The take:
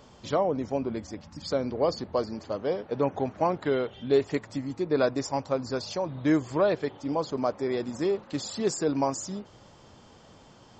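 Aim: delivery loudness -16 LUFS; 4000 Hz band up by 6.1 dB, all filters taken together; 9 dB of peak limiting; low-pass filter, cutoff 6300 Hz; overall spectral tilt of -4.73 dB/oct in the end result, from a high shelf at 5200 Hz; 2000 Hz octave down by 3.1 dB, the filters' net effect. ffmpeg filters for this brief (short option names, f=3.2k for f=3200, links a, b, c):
-af "lowpass=6.3k,equalizer=f=2k:t=o:g=-6.5,equalizer=f=4k:t=o:g=7.5,highshelf=f=5.2k:g=5,volume=16dB,alimiter=limit=-4.5dB:level=0:latency=1"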